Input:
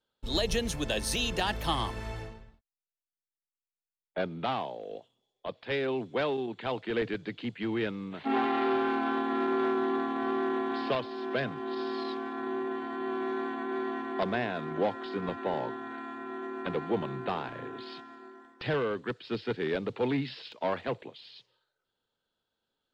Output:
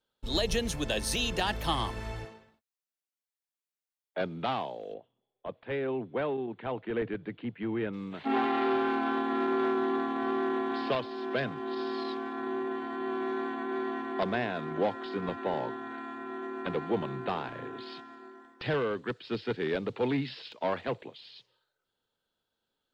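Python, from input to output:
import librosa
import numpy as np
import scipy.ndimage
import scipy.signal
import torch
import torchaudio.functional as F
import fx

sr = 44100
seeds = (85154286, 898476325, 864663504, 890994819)

y = fx.bessel_highpass(x, sr, hz=240.0, order=2, at=(2.25, 4.21))
y = fx.air_absorb(y, sr, metres=490.0, at=(4.93, 7.92), fade=0.02)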